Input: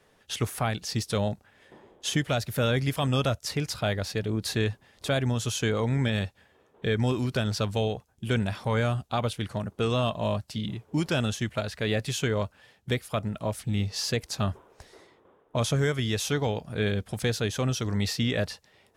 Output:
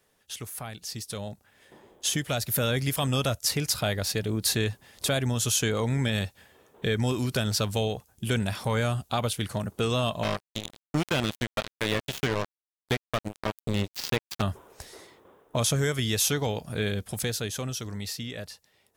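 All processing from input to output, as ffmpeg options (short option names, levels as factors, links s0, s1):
-filter_complex "[0:a]asettb=1/sr,asplit=3[s0][s1][s2];[s0]atrim=end=10.234[s3];[s1]atrim=start=10.23:end=14.42,asetpts=PTS-STARTPTS,afade=t=in:d=0.004:c=qsin,afade=t=out:st=4.186:d=0.004:c=qsin,acrusher=bits=3:mix=0:aa=0.5,acrossover=split=4500[s4][s5];[s5]acompressor=threshold=0.00355:ratio=4:attack=1:release=60[s6];[s4][s6]amix=inputs=2:normalize=0[s7];[s2]atrim=start=14.416[s8];[s3][s7]acrossfade=d=0.004:c1=hsin:c2=qsin[s9];[s9][s8]acrossfade=d=0.004:c1=qsin:c2=hsin,acompressor=threshold=0.02:ratio=1.5,aemphasis=mode=production:type=50kf,dynaudnorm=f=180:g=21:m=3.98,volume=0.398"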